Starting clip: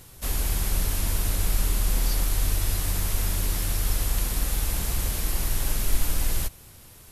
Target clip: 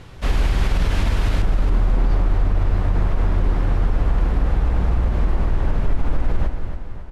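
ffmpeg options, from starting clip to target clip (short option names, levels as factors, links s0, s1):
-af "asetnsamples=n=441:p=0,asendcmd='1.42 lowpass f 1200',lowpass=2800,aecho=1:1:275|550|825|1100|1375:0.335|0.164|0.0804|0.0394|0.0193,alimiter=level_in=8.41:limit=0.891:release=50:level=0:latency=1,volume=0.376"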